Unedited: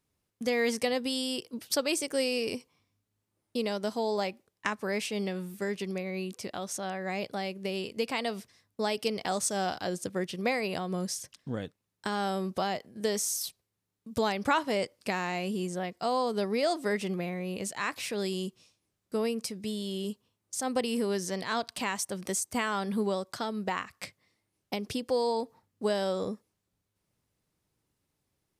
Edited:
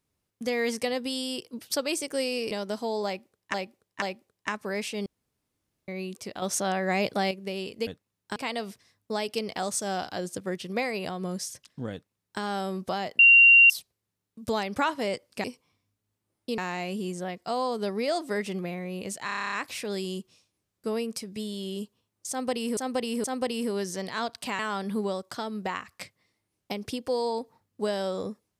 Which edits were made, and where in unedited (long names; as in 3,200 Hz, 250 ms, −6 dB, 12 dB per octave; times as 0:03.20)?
0:02.51–0:03.65: move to 0:15.13
0:04.20–0:04.68: repeat, 3 plays
0:05.24–0:06.06: fill with room tone
0:06.60–0:07.49: clip gain +7.5 dB
0:11.61–0:12.10: duplicate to 0:08.05
0:12.88–0:13.39: beep over 2,760 Hz −11.5 dBFS
0:17.80: stutter 0.03 s, 10 plays
0:20.58–0:21.05: repeat, 3 plays
0:21.93–0:22.61: remove